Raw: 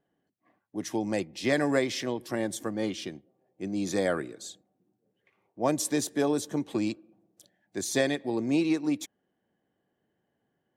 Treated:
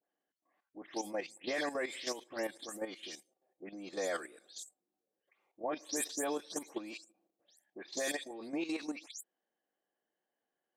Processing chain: delay that grows with frequency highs late, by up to 175 ms; high-pass 460 Hz 12 dB/octave; level held to a coarse grid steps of 11 dB; trim -1.5 dB

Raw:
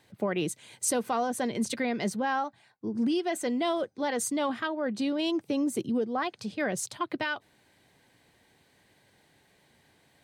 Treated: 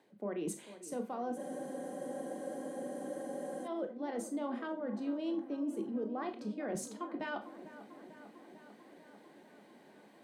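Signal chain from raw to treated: high-pass 220 Hz 24 dB/octave; tilt shelf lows +7.5 dB, about 1.3 kHz; reverse; compression 6:1, threshold -39 dBFS, peak gain reduction 18.5 dB; reverse; feedback echo behind a low-pass 447 ms, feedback 71%, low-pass 1.9 kHz, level -14 dB; on a send at -6.5 dB: reverberation RT60 0.30 s, pre-delay 17 ms; on the sum: spectral freeze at 1.40 s, 2.25 s; trim +1 dB

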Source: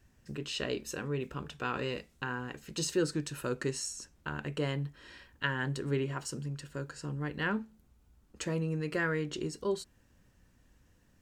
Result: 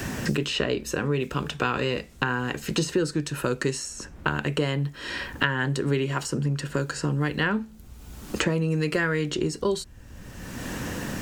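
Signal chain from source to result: three bands compressed up and down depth 100%; trim +8.5 dB

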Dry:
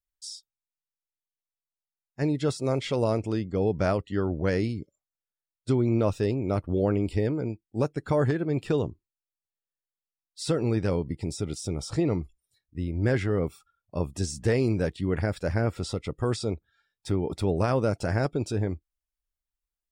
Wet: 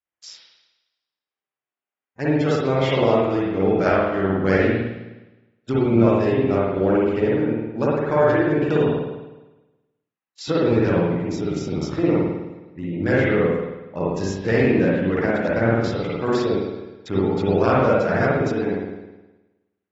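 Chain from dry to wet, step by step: local Wiener filter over 9 samples; high-pass 160 Hz 12 dB/octave; peaking EQ 2 kHz +3.5 dB 2.3 oct; spring tank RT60 1.1 s, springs 52 ms, chirp 80 ms, DRR -5.5 dB; trim +1 dB; AAC 24 kbps 44.1 kHz

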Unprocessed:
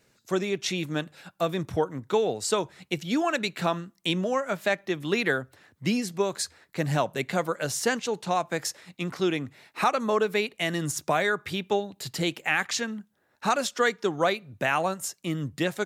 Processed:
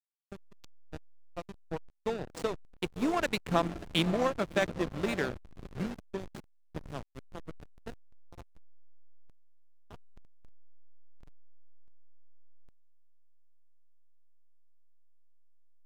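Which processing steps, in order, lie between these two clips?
Doppler pass-by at 3.82 s, 12 m/s, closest 11 m; echo that smears into a reverb 596 ms, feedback 50%, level -8 dB; hysteresis with a dead band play -24 dBFS

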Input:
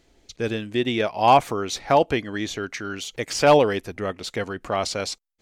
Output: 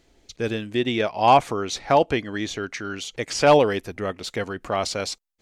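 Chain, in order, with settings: 0.78–3.52 s: low-pass 10 kHz 12 dB/octave

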